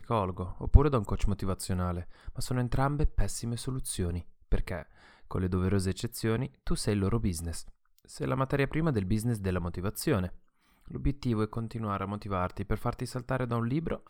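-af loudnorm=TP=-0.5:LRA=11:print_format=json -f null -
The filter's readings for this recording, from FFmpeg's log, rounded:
"input_i" : "-32.0",
"input_tp" : "-4.1",
"input_lra" : "1.7",
"input_thresh" : "-42.3",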